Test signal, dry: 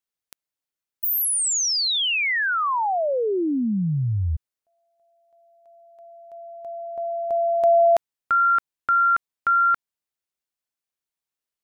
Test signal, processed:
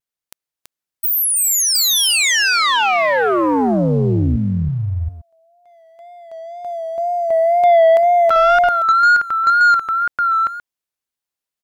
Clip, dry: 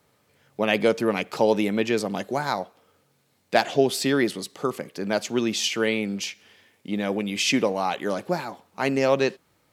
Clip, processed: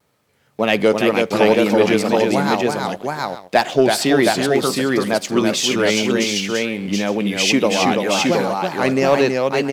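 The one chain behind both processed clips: multi-tap echo 330/722/853 ms -4.5/-3.5/-16 dB; vibrato 2 Hz 67 cents; waveshaping leveller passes 1; trim +2 dB

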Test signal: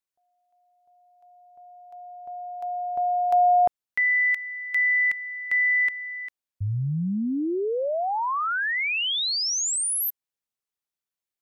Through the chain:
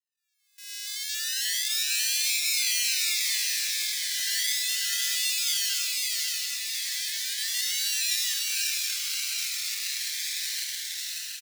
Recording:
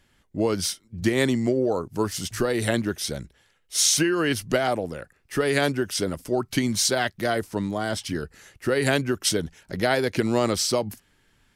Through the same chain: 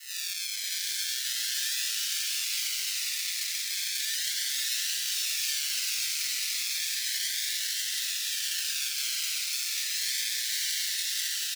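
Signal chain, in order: spectral blur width 688 ms; recorder AGC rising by 42 dB/s, up to +30 dB; decimation with a swept rate 37×, swing 60% 0.35 Hz; saturation -32.5 dBFS; elliptic high-pass 1.7 kHz, stop band 70 dB; treble shelf 3.5 kHz +11 dB; comb 5.1 ms, depth 48%; shuffle delay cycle 723 ms, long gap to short 3:1, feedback 55%, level -3 dB; dynamic bell 4.6 kHz, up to +7 dB, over -48 dBFS, Q 0.74; gate with hold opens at -33 dBFS, range -17 dB; Shepard-style phaser falling 0.31 Hz; trim +2 dB

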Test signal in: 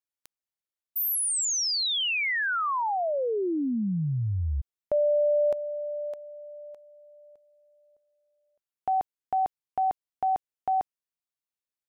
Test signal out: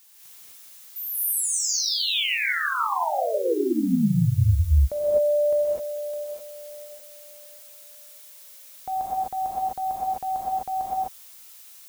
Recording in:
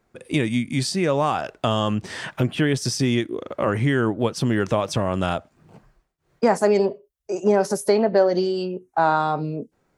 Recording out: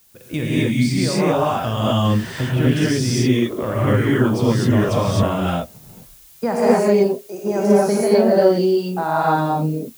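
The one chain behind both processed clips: peaking EQ 70 Hz +9.5 dB 2.4 oct; added noise blue -49 dBFS; gated-style reverb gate 280 ms rising, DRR -7.5 dB; trim -6 dB

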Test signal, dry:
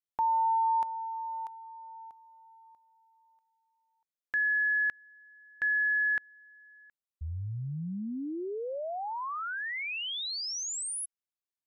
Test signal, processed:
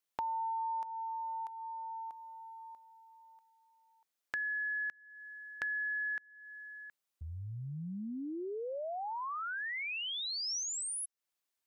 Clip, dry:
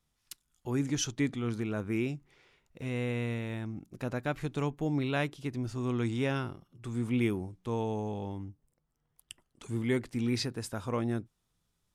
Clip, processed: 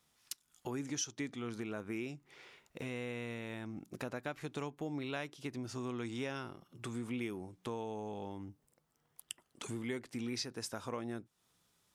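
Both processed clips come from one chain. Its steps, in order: high-pass 310 Hz 6 dB/octave; dynamic bell 5.7 kHz, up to +7 dB, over -59 dBFS, Q 3.1; compression 3:1, threshold -49 dBFS; trim +7.5 dB

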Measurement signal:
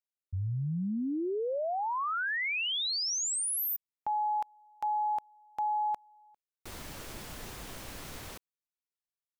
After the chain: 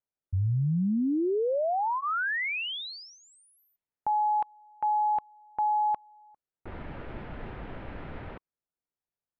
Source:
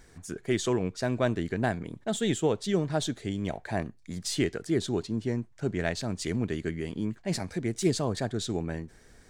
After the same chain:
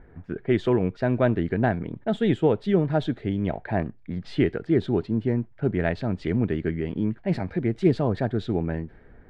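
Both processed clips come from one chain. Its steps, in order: band-stop 1.1 kHz, Q 12; level-controlled noise filter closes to 1.5 kHz, open at -26.5 dBFS; distance through air 450 m; trim +6.5 dB

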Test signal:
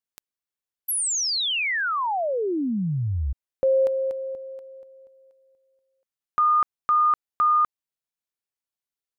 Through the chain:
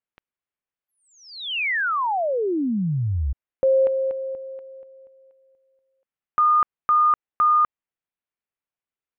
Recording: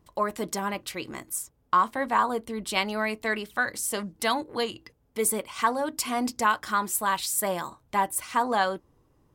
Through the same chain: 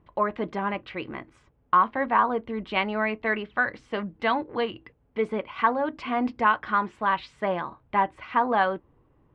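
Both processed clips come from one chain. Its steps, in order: low-pass 2.8 kHz 24 dB/octave; trim +2 dB

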